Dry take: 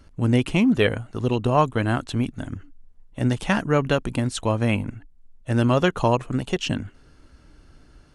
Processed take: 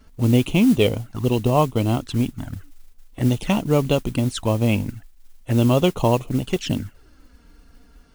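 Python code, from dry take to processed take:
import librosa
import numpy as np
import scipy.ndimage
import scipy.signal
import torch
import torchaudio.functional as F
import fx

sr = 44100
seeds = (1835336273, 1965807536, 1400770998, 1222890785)

y = fx.env_flanger(x, sr, rest_ms=4.9, full_db=-20.0)
y = fx.mod_noise(y, sr, seeds[0], snr_db=23)
y = y * librosa.db_to_amplitude(3.0)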